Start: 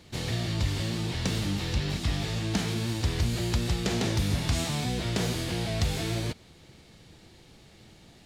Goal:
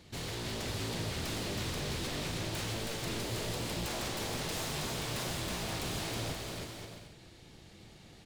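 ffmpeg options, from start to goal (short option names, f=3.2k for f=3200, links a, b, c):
-af "aeval=exprs='0.0299*(abs(mod(val(0)/0.0299+3,4)-2)-1)':c=same,aecho=1:1:320|528|663.2|751.1|808.2:0.631|0.398|0.251|0.158|0.1,volume=-3.5dB"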